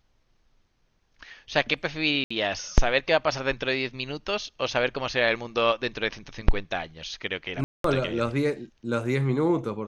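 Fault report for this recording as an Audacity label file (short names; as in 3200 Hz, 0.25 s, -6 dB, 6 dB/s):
2.240000	2.310000	gap 65 ms
7.640000	7.840000	gap 0.203 s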